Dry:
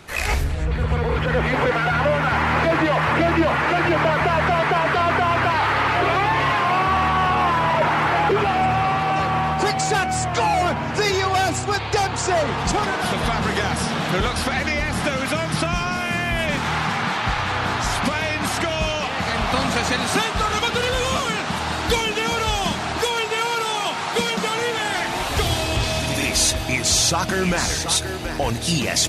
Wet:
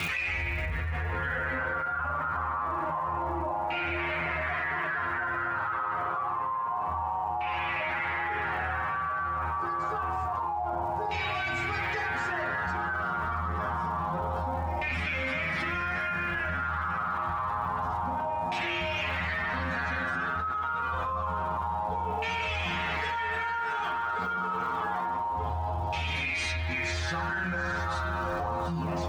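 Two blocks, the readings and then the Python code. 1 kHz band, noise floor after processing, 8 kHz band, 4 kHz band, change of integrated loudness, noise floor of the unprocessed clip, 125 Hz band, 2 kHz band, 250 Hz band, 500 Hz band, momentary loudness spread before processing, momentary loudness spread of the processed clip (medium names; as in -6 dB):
-8.0 dB, -32 dBFS, under -25 dB, -16.5 dB, -10.0 dB, -26 dBFS, -11.0 dB, -8.0 dB, -14.5 dB, -14.5 dB, 4 LU, 2 LU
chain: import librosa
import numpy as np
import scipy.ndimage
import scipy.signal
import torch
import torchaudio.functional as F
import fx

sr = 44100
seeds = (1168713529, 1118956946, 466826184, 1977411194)

p1 = fx.peak_eq(x, sr, hz=2100.0, db=-10.5, octaves=1.6)
p2 = p1 + fx.echo_diffused(p1, sr, ms=743, feedback_pct=64, wet_db=-13.5, dry=0)
p3 = fx.filter_lfo_lowpass(p2, sr, shape='saw_down', hz=0.27, low_hz=800.0, high_hz=2500.0, q=5.2)
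p4 = fx.tone_stack(p3, sr, knobs='5-5-5')
p5 = fx.stiff_resonator(p4, sr, f0_hz=85.0, decay_s=0.37, stiffness=0.002)
p6 = fx.dmg_crackle(p5, sr, seeds[0], per_s=430.0, level_db=-64.0)
p7 = scipy.signal.sosfilt(scipy.signal.butter(2, 59.0, 'highpass', fs=sr, output='sos'), p6)
p8 = fx.rev_spring(p7, sr, rt60_s=1.0, pass_ms=(49,), chirp_ms=55, drr_db=1.0)
y = fx.env_flatten(p8, sr, amount_pct=100)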